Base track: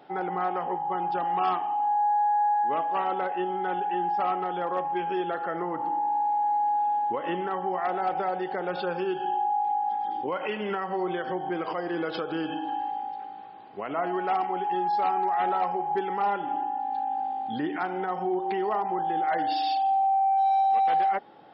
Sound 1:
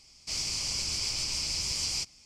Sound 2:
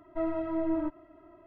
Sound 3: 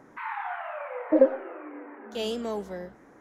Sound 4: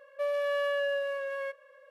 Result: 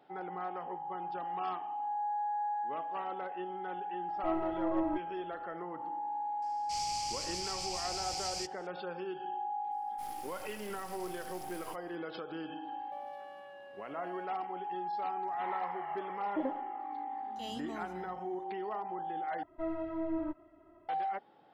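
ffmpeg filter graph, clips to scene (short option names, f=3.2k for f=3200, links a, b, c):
-filter_complex "[2:a]asplit=2[a][b];[1:a]asplit=2[c][d];[0:a]volume=-11dB[e];[d]aeval=exprs='abs(val(0))':c=same[f];[4:a]acompressor=threshold=-38dB:ratio=6:attack=3.2:release=140:knee=1:detection=peak[g];[3:a]aecho=1:1:1:0.7[h];[e]asplit=2[i][j];[i]atrim=end=19.434[k];[b]atrim=end=1.46,asetpts=PTS-STARTPTS,volume=-5.5dB[l];[j]atrim=start=20.886[m];[a]atrim=end=1.46,asetpts=PTS-STARTPTS,volume=-3dB,afade=t=in:d=0.004:c=hsin,afade=t=out:st=1.456:d=0.004:c=hsin,adelay=4080[n];[c]atrim=end=2.25,asetpts=PTS-STARTPTS,volume=-8dB,afade=t=in:d=0.004:c=hsin,afade=t=out:st=2.246:d=0.004:c=hsin,adelay=283122S[o];[f]atrim=end=2.25,asetpts=PTS-STARTPTS,volume=-16.5dB,afade=t=in:d=0.004:c=hsin,afade=t=out:st=2.246:d=0.004:c=hsin,adelay=9710[p];[g]atrim=end=1.9,asetpts=PTS-STARTPTS,volume=-11dB,afade=t=in:d=0.004:c=hsin,afade=t=out:st=1.896:d=0.004:c=hsin,adelay=12730[q];[h]atrim=end=3.2,asetpts=PTS-STARTPTS,volume=-11.5dB,afade=t=in:d=0.004:c=hsin,afade=t=out:st=3.196:d=0.004:c=hsin,adelay=672084S[r];[k][l]acrossfade=d=0.004:c1=hsin:c2=hsin[s];[s][m]acrossfade=d=0.004:c1=hsin:c2=hsin[t];[t][n][o][p][q][r]amix=inputs=6:normalize=0"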